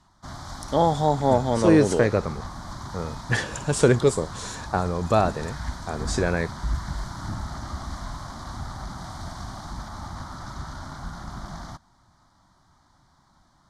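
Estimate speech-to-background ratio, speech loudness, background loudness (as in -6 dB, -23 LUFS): 13.5 dB, -22.5 LUFS, -36.0 LUFS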